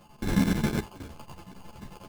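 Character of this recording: a buzz of ramps at a fixed pitch in blocks of 16 samples; chopped level 11 Hz, depth 65%, duty 70%; aliases and images of a low sample rate 1900 Hz, jitter 0%; a shimmering, thickened sound

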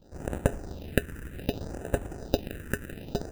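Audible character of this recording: aliases and images of a low sample rate 1100 Hz, jitter 0%; phasing stages 4, 0.64 Hz, lowest notch 690–4700 Hz

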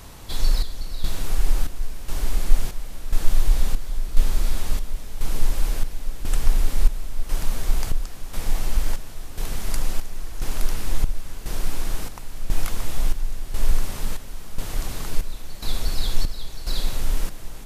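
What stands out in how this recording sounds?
chopped level 0.96 Hz, depth 65%, duty 60%

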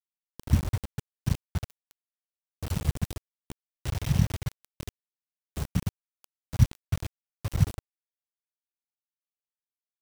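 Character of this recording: tremolo triangle 9.1 Hz, depth 30%; aliases and images of a low sample rate 5800 Hz, jitter 0%; phasing stages 2, 0.41 Hz, lowest notch 650–1700 Hz; a quantiser's noise floor 6-bit, dither none

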